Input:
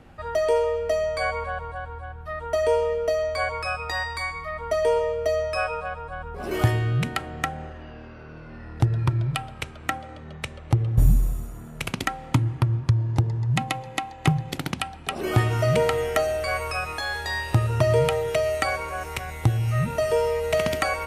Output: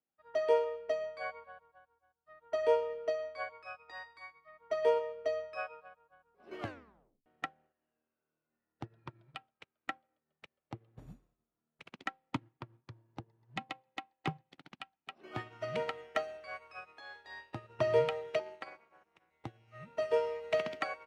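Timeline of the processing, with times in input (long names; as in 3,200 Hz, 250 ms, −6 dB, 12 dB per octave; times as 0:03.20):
0:06.60: tape stop 0.66 s
0:14.47–0:16.78: parametric band 440 Hz −4.5 dB 0.9 octaves
0:18.39–0:19.31: amplitude modulation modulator 250 Hz, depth 80%
whole clip: three-way crossover with the lows and the highs turned down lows −21 dB, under 180 Hz, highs −22 dB, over 5,100 Hz; expander for the loud parts 2.5 to 1, over −45 dBFS; level −4.5 dB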